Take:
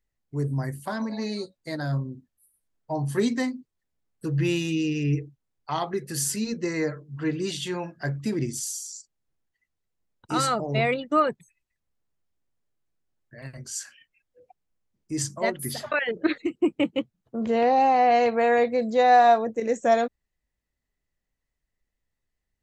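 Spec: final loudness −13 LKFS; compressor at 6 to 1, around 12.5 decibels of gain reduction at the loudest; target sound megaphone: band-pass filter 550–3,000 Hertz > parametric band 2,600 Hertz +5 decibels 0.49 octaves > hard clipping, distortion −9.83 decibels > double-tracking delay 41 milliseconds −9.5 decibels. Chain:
downward compressor 6 to 1, threshold −27 dBFS
band-pass filter 550–3,000 Hz
parametric band 2,600 Hz +5 dB 0.49 octaves
hard clipping −32 dBFS
double-tracking delay 41 ms −9.5 dB
level +25 dB

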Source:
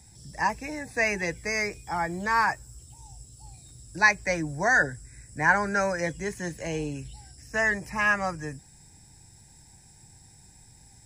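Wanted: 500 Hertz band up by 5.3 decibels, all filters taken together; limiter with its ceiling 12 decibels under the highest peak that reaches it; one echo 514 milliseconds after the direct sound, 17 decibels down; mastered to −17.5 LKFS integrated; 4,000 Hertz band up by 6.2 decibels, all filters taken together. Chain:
parametric band 500 Hz +6.5 dB
parametric band 4,000 Hz +8 dB
brickwall limiter −16.5 dBFS
single-tap delay 514 ms −17 dB
level +10.5 dB

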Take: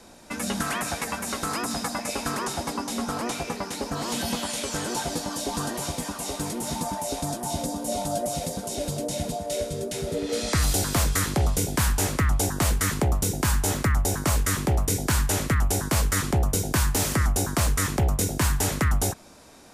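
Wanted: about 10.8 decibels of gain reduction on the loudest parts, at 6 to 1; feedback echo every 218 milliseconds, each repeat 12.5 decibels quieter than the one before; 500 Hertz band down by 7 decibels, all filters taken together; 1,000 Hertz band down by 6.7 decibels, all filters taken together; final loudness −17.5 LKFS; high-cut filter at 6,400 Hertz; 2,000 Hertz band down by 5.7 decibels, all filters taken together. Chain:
low-pass filter 6,400 Hz
parametric band 500 Hz −7.5 dB
parametric band 1,000 Hz −5 dB
parametric band 2,000 Hz −5 dB
downward compressor 6 to 1, threshold −31 dBFS
repeating echo 218 ms, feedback 24%, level −12.5 dB
level +17.5 dB

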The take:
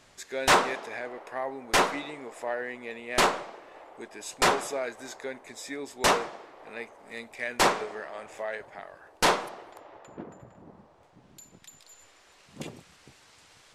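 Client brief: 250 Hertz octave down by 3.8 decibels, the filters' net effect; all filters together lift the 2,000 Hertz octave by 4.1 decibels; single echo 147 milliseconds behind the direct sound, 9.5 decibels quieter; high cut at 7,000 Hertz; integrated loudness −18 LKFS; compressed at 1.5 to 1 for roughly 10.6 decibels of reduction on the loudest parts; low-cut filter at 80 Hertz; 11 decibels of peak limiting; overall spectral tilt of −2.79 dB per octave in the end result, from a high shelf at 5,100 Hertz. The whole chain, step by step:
high-pass filter 80 Hz
low-pass filter 7,000 Hz
parametric band 250 Hz −5.5 dB
parametric band 2,000 Hz +6 dB
high-shelf EQ 5,100 Hz −6 dB
downward compressor 1.5 to 1, threshold −46 dBFS
brickwall limiter −29.5 dBFS
single-tap delay 147 ms −9.5 dB
level +23.5 dB

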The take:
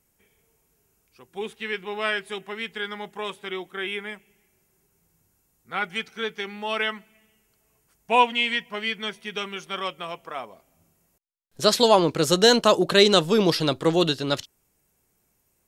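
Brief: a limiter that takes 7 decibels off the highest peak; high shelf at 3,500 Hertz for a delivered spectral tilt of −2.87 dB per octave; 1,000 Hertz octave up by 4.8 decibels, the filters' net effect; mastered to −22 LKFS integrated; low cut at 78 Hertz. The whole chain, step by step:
high-pass filter 78 Hz
parametric band 1,000 Hz +5 dB
high-shelf EQ 3,500 Hz +7.5 dB
level +0.5 dB
brickwall limiter −5 dBFS

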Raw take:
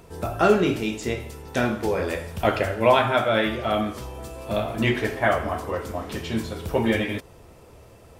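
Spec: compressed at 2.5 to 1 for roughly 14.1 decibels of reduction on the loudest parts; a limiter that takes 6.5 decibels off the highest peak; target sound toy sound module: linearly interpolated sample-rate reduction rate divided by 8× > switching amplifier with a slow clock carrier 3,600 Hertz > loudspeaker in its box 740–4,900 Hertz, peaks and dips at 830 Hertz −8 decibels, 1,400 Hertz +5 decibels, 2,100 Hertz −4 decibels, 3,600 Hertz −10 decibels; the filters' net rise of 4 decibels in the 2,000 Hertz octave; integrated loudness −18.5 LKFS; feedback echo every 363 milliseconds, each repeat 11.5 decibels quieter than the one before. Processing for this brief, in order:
parametric band 2,000 Hz +5.5 dB
downward compressor 2.5 to 1, threshold −34 dBFS
brickwall limiter −22.5 dBFS
repeating echo 363 ms, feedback 27%, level −11.5 dB
linearly interpolated sample-rate reduction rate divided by 8×
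switching amplifier with a slow clock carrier 3,600 Hz
loudspeaker in its box 740–4,900 Hz, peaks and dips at 830 Hz −8 dB, 1,400 Hz +5 dB, 2,100 Hz −4 dB, 3,600 Hz −10 dB
level +24 dB

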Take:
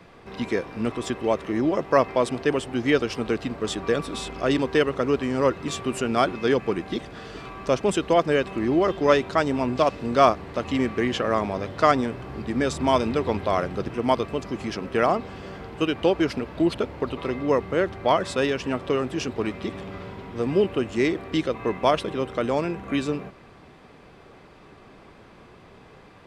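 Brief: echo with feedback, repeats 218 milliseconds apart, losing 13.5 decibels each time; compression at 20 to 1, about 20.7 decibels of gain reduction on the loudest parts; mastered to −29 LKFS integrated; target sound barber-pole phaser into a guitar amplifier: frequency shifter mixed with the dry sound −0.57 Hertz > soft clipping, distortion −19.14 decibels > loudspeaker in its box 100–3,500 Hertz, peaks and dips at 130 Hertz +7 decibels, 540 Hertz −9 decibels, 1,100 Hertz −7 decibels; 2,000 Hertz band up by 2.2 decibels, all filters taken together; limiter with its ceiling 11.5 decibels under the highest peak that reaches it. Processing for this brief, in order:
parametric band 2,000 Hz +3.5 dB
downward compressor 20 to 1, threshold −32 dBFS
brickwall limiter −29 dBFS
repeating echo 218 ms, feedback 21%, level −13.5 dB
frequency shifter mixed with the dry sound −0.57 Hz
soft clipping −34 dBFS
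loudspeaker in its box 100–3,500 Hz, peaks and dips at 130 Hz +7 dB, 540 Hz −9 dB, 1,100 Hz −7 dB
level +16.5 dB

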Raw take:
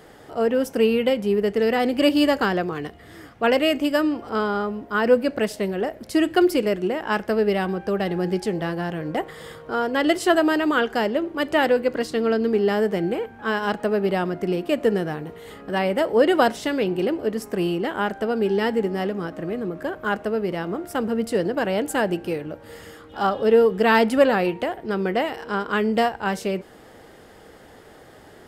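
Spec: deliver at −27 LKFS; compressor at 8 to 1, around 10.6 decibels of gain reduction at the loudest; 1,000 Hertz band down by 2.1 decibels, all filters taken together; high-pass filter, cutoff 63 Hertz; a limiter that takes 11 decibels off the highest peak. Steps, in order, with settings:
high-pass filter 63 Hz
parametric band 1,000 Hz −3 dB
downward compressor 8 to 1, threshold −23 dBFS
level +5.5 dB
brickwall limiter −18 dBFS

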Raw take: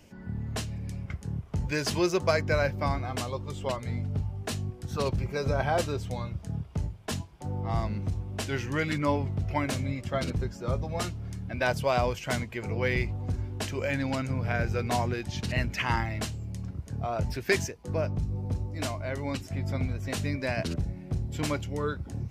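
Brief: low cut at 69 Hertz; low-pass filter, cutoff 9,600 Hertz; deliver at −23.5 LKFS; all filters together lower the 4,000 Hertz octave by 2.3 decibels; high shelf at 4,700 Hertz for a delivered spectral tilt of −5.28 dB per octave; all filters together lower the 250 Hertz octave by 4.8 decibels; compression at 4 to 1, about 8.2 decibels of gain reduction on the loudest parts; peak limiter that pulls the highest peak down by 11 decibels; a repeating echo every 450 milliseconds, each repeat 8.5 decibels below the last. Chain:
high-pass filter 69 Hz
low-pass filter 9,600 Hz
parametric band 250 Hz −7 dB
parametric band 4,000 Hz −7.5 dB
high-shelf EQ 4,700 Hz +8 dB
downward compressor 4 to 1, threshold −31 dBFS
brickwall limiter −28 dBFS
repeating echo 450 ms, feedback 38%, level −8.5 dB
level +14 dB

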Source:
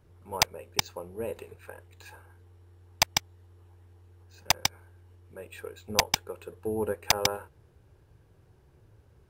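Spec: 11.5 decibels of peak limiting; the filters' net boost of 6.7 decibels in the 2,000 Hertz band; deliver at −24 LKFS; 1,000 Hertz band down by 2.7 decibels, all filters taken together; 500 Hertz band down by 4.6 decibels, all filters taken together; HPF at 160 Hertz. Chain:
high-pass filter 160 Hz
parametric band 500 Hz −5 dB
parametric band 1,000 Hz −3.5 dB
parametric band 2,000 Hz +9 dB
level +12.5 dB
brickwall limiter −2 dBFS

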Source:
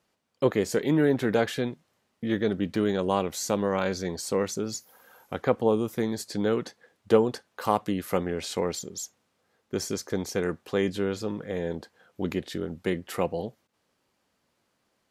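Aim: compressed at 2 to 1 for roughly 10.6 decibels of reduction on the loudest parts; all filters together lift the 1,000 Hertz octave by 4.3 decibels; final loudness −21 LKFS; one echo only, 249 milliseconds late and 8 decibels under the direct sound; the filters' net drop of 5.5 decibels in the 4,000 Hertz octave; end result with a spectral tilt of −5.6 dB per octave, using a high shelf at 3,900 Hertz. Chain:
parametric band 1,000 Hz +6 dB
high-shelf EQ 3,900 Hz −5.5 dB
parametric band 4,000 Hz −4 dB
downward compressor 2 to 1, threshold −33 dBFS
single-tap delay 249 ms −8 dB
level +13 dB

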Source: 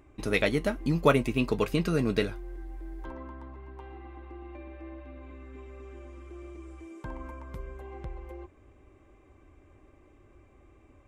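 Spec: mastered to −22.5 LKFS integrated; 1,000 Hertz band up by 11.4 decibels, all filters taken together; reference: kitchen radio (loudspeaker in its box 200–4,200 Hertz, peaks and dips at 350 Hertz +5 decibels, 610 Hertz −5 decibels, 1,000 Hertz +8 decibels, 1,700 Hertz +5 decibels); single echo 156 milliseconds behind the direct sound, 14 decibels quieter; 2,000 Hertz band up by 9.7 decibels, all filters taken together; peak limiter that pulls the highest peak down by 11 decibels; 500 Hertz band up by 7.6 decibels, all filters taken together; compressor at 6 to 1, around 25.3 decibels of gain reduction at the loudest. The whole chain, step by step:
parametric band 500 Hz +8 dB
parametric band 1,000 Hz +4.5 dB
parametric band 2,000 Hz +7.5 dB
downward compressor 6 to 1, threshold −37 dBFS
brickwall limiter −34.5 dBFS
loudspeaker in its box 200–4,200 Hz, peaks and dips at 350 Hz +5 dB, 610 Hz −5 dB, 1,000 Hz +8 dB, 1,700 Hz +5 dB
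single-tap delay 156 ms −14 dB
level +20.5 dB

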